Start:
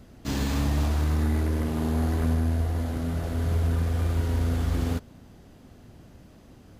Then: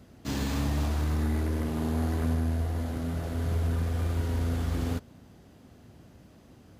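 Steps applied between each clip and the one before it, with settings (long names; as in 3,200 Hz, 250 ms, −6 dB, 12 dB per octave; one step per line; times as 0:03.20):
high-pass filter 58 Hz
level −2.5 dB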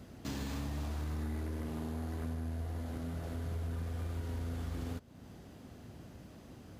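downward compressor 2.5 to 1, threshold −43 dBFS, peak gain reduction 13 dB
level +1.5 dB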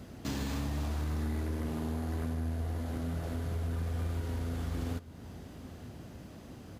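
single-tap delay 905 ms −17.5 dB
level +4 dB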